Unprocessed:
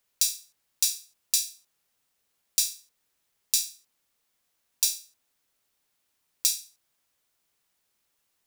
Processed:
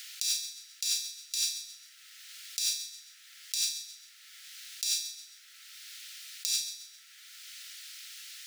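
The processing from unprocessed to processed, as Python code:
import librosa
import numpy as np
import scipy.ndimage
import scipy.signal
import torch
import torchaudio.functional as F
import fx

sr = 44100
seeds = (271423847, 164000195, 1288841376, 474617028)

p1 = fx.peak_eq(x, sr, hz=2800.0, db=12.5, octaves=2.7)
p2 = fx.over_compress(p1, sr, threshold_db=-28.0, ratio=-1.0)
p3 = 10.0 ** (-15.5 / 20.0) * np.tanh(p2 / 10.0 ** (-15.5 / 20.0))
p4 = scipy.signal.sosfilt(scipy.signal.cheby1(6, 3, 1300.0, 'highpass', fs=sr, output='sos'), p3)
p5 = p4 + fx.echo_feedback(p4, sr, ms=132, feedback_pct=30, wet_db=-14.0, dry=0)
y = fx.band_squash(p5, sr, depth_pct=70)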